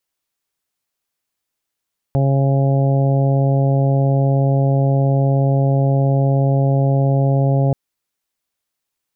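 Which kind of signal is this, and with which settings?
steady additive tone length 5.58 s, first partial 137 Hz, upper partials -11/-13.5/-10/-13/-18.5 dB, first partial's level -13 dB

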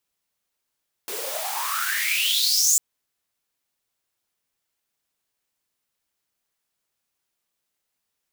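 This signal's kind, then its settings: swept filtered noise white, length 1.70 s highpass, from 380 Hz, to 7.4 kHz, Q 9.2, exponential, gain ramp +7.5 dB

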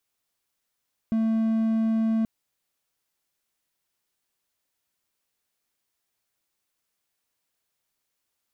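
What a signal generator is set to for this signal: tone triangle 223 Hz -18.5 dBFS 1.13 s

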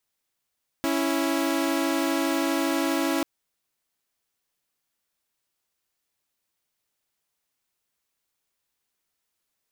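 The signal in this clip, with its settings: chord C#4/E4 saw, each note -23 dBFS 2.39 s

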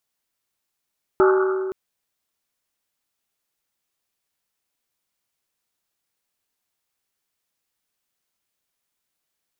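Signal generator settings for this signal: Risset drum length 0.52 s, pitch 380 Hz, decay 2.50 s, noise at 1.3 kHz, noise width 370 Hz, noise 25%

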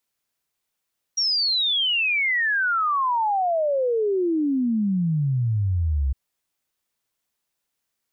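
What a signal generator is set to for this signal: log sweep 5.7 kHz -> 64 Hz 4.96 s -19 dBFS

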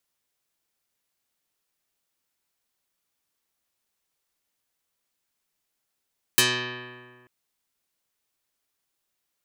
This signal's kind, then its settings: plucked string B2, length 0.89 s, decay 1.77 s, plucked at 0.18, dark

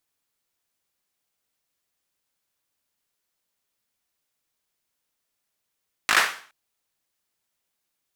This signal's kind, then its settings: hand clap length 0.42 s, bursts 5, apart 19 ms, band 1.5 kHz, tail 0.44 s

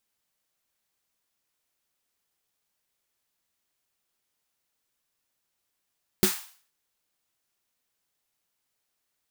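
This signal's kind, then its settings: snare drum length 0.47 s, tones 200 Hz, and 370 Hz, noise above 780 Hz, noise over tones -4 dB, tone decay 0.13 s, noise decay 0.47 s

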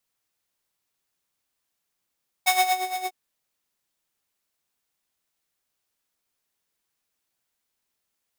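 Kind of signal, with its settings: synth patch with tremolo F#5, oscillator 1 square, interval -12 st, detune 19 cents, noise -8 dB, filter highpass, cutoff 310 Hz, Q 0.88, filter envelope 2 oct, filter decay 0.36 s, filter sustain 10%, attack 17 ms, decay 0.35 s, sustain -13 dB, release 0.05 s, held 0.60 s, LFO 8.7 Hz, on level 11 dB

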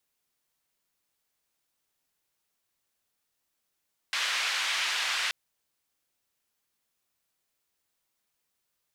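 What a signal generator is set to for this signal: noise band 1.5–3.2 kHz, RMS -29.5 dBFS 1.18 s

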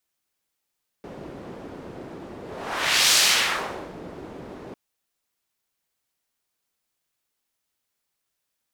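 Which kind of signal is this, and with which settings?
whoosh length 3.70 s, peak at 2.11 s, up 0.77 s, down 0.86 s, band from 350 Hz, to 4.8 kHz, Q 1, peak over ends 22 dB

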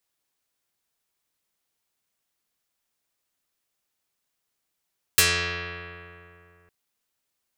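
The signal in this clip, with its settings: plucked string F2, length 1.51 s, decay 2.81 s, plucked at 0.34, dark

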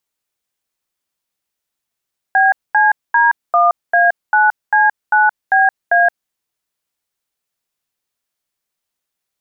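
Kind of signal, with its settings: DTMF "BCD1A9C9BA", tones 172 ms, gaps 224 ms, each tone -11 dBFS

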